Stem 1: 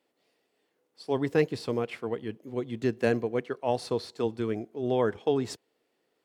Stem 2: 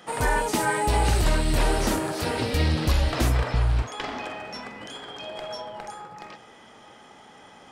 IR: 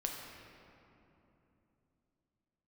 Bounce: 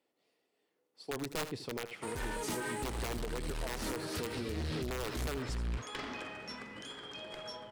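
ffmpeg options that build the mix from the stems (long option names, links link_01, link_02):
-filter_complex "[0:a]aeval=exprs='(mod(7.94*val(0)+1,2)-1)/7.94':channel_layout=same,bandreject=frequency=1600:width=20,volume=-5dB,asplit=2[link_01][link_02];[link_02]volume=-14.5dB[link_03];[1:a]equalizer=frequency=740:width_type=o:width=0.62:gain=-9,asoftclip=type=hard:threshold=-26dB,adelay=1950,volume=-6.5dB[link_04];[link_03]aecho=0:1:79:1[link_05];[link_01][link_04][link_05]amix=inputs=3:normalize=0,alimiter=level_in=5dB:limit=-24dB:level=0:latency=1:release=160,volume=-5dB"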